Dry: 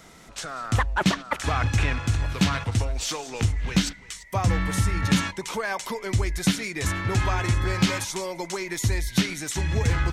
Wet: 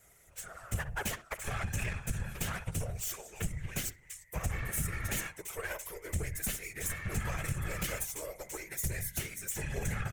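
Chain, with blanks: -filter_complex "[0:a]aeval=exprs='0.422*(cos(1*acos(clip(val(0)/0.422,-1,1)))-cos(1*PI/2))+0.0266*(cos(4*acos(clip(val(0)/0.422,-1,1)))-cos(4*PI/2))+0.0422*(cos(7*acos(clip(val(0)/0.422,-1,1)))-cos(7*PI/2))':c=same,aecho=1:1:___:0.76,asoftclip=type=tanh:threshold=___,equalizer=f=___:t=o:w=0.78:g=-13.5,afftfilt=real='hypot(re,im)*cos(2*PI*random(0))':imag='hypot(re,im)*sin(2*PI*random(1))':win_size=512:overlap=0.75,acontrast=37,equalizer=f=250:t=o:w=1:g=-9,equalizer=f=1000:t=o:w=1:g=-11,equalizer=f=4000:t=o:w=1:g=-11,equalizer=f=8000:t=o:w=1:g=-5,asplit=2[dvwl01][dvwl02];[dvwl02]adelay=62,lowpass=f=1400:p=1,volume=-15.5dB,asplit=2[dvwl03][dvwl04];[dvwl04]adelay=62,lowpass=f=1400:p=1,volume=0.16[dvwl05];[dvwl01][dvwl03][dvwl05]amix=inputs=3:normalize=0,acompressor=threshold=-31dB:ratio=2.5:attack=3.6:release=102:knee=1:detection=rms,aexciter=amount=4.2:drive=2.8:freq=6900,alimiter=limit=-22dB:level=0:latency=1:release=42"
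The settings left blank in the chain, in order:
7.2, -14.5dB, 230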